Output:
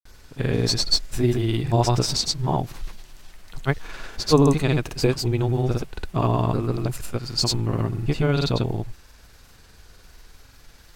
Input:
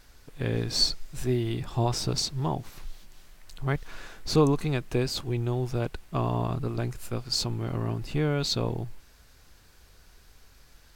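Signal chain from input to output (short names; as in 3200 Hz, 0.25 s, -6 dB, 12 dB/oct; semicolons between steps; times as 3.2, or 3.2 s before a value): grains, grains 20/s, pitch spread up and down by 0 st; gain +7.5 dB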